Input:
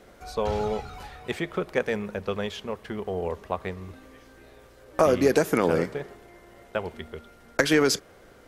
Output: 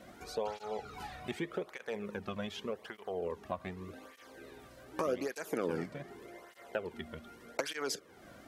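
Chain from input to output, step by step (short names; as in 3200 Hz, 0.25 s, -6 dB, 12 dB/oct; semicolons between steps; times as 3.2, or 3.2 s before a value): compressor 2:1, threshold -40 dBFS, peak gain reduction 13.5 dB; tape flanging out of phase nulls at 0.84 Hz, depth 2.5 ms; gain +2 dB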